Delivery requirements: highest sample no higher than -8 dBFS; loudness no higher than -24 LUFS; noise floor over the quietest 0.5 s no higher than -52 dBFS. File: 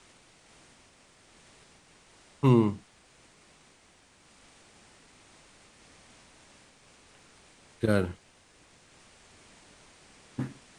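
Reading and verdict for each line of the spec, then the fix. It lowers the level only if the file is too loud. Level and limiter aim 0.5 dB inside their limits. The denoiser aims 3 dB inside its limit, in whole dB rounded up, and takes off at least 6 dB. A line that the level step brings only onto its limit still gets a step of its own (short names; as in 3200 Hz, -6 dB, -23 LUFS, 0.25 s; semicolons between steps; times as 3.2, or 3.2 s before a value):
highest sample -10.5 dBFS: OK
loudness -28.0 LUFS: OK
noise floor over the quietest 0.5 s -61 dBFS: OK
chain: none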